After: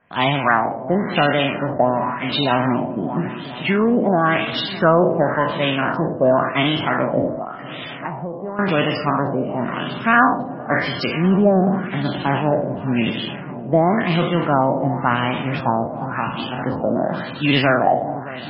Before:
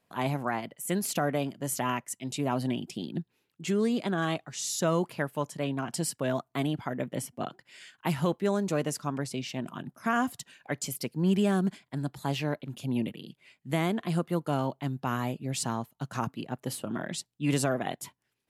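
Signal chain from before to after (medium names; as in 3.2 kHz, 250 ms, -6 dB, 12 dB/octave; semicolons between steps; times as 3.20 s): spectral sustain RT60 0.73 s; 15.87–16.59 s: feedback comb 200 Hz, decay 0.23 s, harmonics all, mix 50%; on a send: echo whose repeats swap between lows and highs 206 ms, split 1.3 kHz, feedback 88%, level -14 dB; on the sum: dynamic bell 110 Hz, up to -3 dB, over -42 dBFS, Q 1.1; in parallel at -9 dB: saturation -20 dBFS, distortion -16 dB; on the sum: peaking EQ 430 Hz -3 dB 0.48 oct; LFO low-pass sine 0.93 Hz 610–3600 Hz; 7.35–8.59 s: compression 5:1, threshold -34 dBFS, peak gain reduction 16 dB; trim +8 dB; MP3 16 kbps 22.05 kHz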